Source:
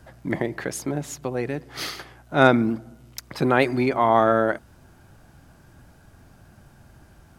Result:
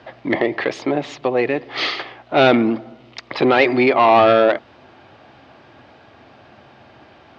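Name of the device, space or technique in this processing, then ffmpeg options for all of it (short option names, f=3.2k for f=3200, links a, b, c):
overdrive pedal into a guitar cabinet: -filter_complex "[0:a]asplit=2[a][b];[b]highpass=f=720:p=1,volume=22dB,asoftclip=type=tanh:threshold=-1dB[c];[a][c]amix=inputs=2:normalize=0,lowpass=f=4k:p=1,volume=-6dB,highpass=98,equalizer=f=170:t=q:w=4:g=-10,equalizer=f=950:t=q:w=4:g=-3,equalizer=f=1.5k:t=q:w=4:g=-10,lowpass=f=4k:w=0.5412,lowpass=f=4k:w=1.3066"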